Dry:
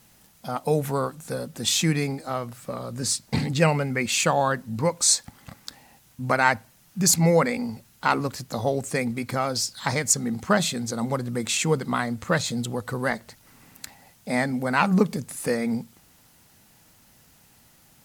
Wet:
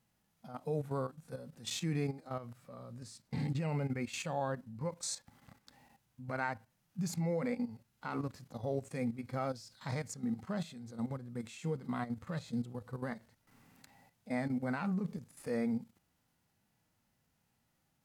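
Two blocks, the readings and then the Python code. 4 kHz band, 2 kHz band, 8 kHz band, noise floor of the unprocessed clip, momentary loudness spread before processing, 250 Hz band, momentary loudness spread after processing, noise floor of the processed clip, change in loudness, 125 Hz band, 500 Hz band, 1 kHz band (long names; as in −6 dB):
−19.5 dB, −18.0 dB, −22.5 dB, −57 dBFS, 13 LU, −11.0 dB, 13 LU, −78 dBFS, −14.5 dB, −11.0 dB, −14.0 dB, −16.5 dB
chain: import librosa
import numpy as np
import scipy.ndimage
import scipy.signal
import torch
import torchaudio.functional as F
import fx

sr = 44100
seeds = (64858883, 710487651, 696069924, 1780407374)

y = fx.high_shelf(x, sr, hz=3700.0, db=-7.5)
y = fx.level_steps(y, sr, step_db=14)
y = fx.hpss(y, sr, part='percussive', gain_db=-11)
y = y * 10.0 ** (-4.5 / 20.0)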